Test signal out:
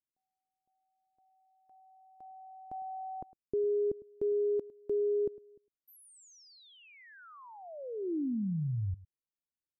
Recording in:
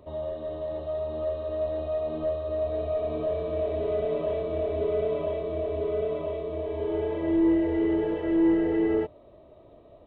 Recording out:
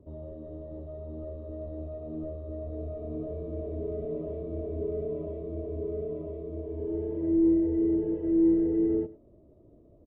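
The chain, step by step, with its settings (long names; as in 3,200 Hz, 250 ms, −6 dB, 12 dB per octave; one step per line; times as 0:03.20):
drawn EQ curve 330 Hz 0 dB, 790 Hz −17 dB, 3,000 Hz −26 dB
on a send: single-tap delay 105 ms −19 dB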